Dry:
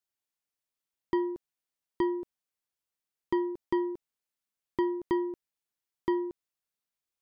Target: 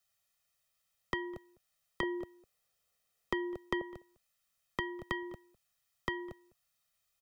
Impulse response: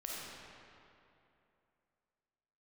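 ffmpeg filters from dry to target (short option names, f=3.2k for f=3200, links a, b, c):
-filter_complex "[0:a]asetnsamples=n=441:p=0,asendcmd='2.03 equalizer g 2.5;3.81 equalizer g -8.5',equalizer=f=380:w=1.1:g=-6.5,aecho=1:1:1.6:0.82,acrossover=split=100|540|2100[a][b][c][d];[a]acompressor=threshold=-56dB:ratio=4[e];[b]acompressor=threshold=-47dB:ratio=4[f];[c]acompressor=threshold=-45dB:ratio=4[g];[d]acompressor=threshold=-53dB:ratio=4[h];[e][f][g][h]amix=inputs=4:normalize=0,asplit=2[i][j];[j]adelay=204.1,volume=-23dB,highshelf=f=4k:g=-4.59[k];[i][k]amix=inputs=2:normalize=0,volume=8dB"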